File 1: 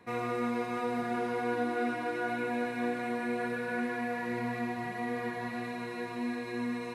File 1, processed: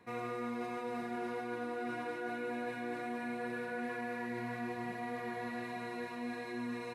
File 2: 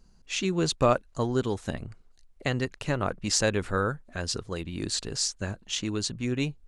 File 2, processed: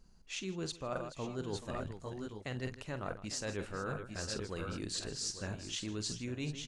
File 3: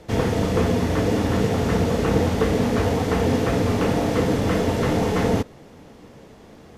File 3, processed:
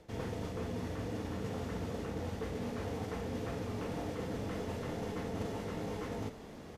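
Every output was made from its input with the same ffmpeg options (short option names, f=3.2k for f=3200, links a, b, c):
-af "aecho=1:1:47|159|431|851|870:0.237|0.133|0.141|0.224|0.2,areverse,acompressor=threshold=-31dB:ratio=16,areverse,volume=-4dB"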